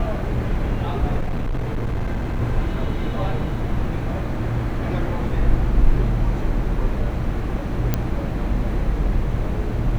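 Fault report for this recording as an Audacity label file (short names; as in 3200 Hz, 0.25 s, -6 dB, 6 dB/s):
1.200000	2.410000	clipped -19.5 dBFS
7.940000	7.940000	pop -6 dBFS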